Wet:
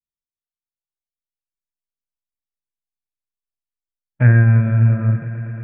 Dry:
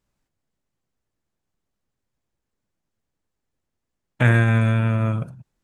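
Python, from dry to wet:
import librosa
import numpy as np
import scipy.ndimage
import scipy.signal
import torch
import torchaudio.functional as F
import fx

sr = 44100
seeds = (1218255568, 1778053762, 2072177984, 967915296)

y = scipy.signal.sosfilt(scipy.signal.butter(4, 2700.0, 'lowpass', fs=sr, output='sos'), x)
y = fx.echo_swell(y, sr, ms=113, loudest=5, wet_db=-15.5)
y = fx.spectral_expand(y, sr, expansion=1.5)
y = y * librosa.db_to_amplitude(2.5)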